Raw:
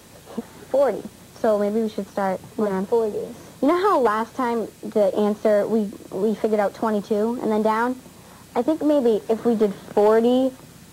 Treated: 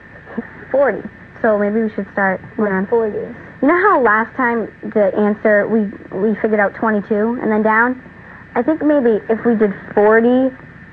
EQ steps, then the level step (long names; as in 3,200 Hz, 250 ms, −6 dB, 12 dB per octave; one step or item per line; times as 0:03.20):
low-pass with resonance 1,800 Hz, resonance Q 8.8
low-shelf EQ 290 Hz +6 dB
+2.5 dB